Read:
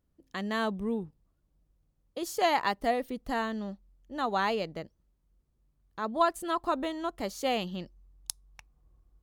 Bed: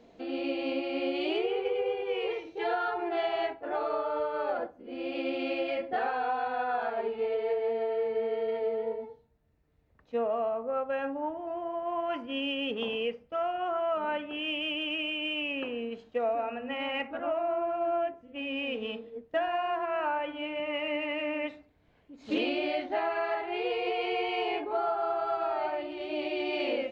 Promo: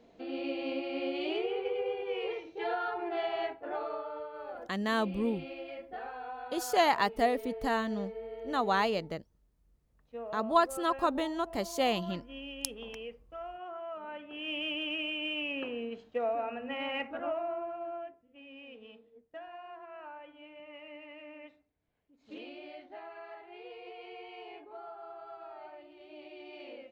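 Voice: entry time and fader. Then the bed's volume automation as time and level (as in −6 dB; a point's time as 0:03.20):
4.35 s, +0.5 dB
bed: 0:03.68 −3.5 dB
0:04.31 −11.5 dB
0:14.12 −11.5 dB
0:14.58 −2.5 dB
0:17.24 −2.5 dB
0:18.40 −16.5 dB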